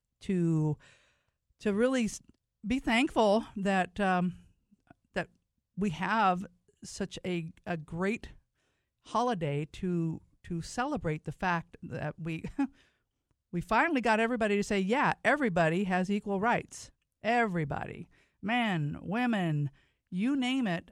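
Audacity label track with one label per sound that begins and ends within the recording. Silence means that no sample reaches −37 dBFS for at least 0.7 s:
1.660000	4.310000	sound
5.160000	8.260000	sound
9.130000	12.650000	sound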